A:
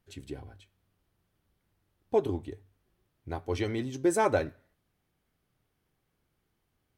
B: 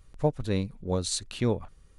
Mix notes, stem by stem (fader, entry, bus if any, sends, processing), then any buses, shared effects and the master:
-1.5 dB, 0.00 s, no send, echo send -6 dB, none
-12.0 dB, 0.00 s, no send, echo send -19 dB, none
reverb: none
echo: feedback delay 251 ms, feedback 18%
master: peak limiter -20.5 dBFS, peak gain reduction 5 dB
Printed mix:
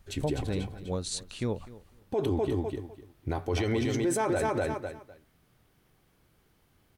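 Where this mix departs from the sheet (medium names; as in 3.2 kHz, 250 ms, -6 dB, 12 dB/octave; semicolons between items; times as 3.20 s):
stem A -1.5 dB -> +10.0 dB; stem B -12.0 dB -> -4.5 dB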